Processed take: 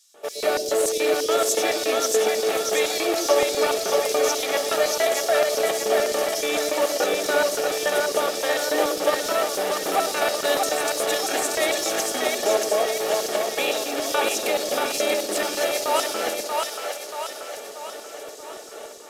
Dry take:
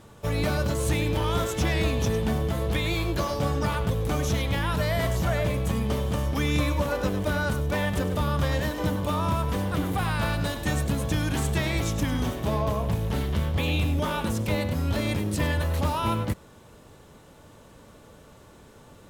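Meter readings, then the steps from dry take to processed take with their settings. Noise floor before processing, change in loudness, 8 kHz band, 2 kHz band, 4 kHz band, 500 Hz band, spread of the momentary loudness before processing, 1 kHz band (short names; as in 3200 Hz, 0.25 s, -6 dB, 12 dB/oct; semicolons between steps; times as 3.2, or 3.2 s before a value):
-51 dBFS, +4.0 dB, +13.0 dB, +5.0 dB, +8.5 dB, +9.5 dB, 2 LU, +5.5 dB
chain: in parallel at -10.5 dB: wrapped overs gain 25.5 dB; on the sum: bell 1000 Hz -11 dB 0.24 oct; notch comb 510 Hz; AGC; limiter -12 dBFS, peak gain reduction 8.5 dB; HPF 290 Hz 12 dB/oct; LFO high-pass square 3.5 Hz 490–5400 Hz; on a send: split-band echo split 520 Hz, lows 0.118 s, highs 0.633 s, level -3 dB; on the sum: downsampling 32000 Hz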